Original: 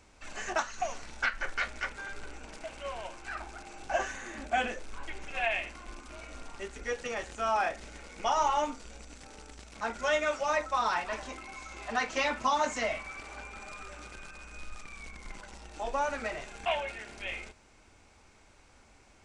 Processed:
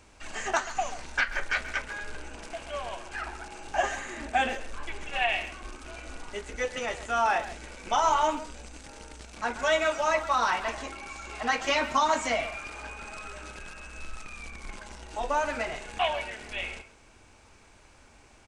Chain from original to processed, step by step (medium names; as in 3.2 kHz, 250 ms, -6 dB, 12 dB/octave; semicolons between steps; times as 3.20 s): speakerphone echo 140 ms, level -12 dB; speed mistake 24 fps film run at 25 fps; trim +3.5 dB